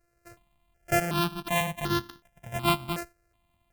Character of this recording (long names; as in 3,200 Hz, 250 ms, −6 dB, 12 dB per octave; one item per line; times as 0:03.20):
a buzz of ramps at a fixed pitch in blocks of 128 samples
notches that jump at a steady rate 2.7 Hz 920–2,300 Hz